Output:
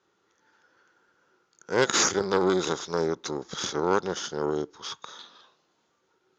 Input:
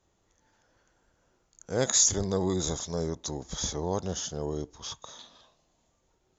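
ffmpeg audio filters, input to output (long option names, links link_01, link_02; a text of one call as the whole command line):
ffmpeg -i in.wav -af "aeval=exprs='0.299*(cos(1*acos(clip(val(0)/0.299,-1,1)))-cos(1*PI/2))+0.0944*(cos(6*acos(clip(val(0)/0.299,-1,1)))-cos(6*PI/2))+0.0168*(cos(8*acos(clip(val(0)/0.299,-1,1)))-cos(8*PI/2))':channel_layout=same,highpass=230,equalizer=frequency=250:width_type=q:width=4:gain=-4,equalizer=frequency=390:width_type=q:width=4:gain=4,equalizer=frequency=650:width_type=q:width=4:gain=-9,equalizer=frequency=1400:width_type=q:width=4:gain=9,lowpass=frequency=5600:width=0.5412,lowpass=frequency=5600:width=1.3066,volume=3dB" out.wav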